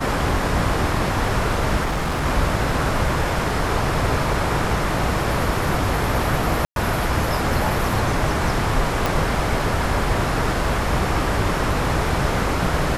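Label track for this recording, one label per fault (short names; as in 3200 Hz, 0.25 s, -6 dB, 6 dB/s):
1.840000	2.260000	clipped -19 dBFS
6.650000	6.760000	gap 0.112 s
9.060000	9.060000	pop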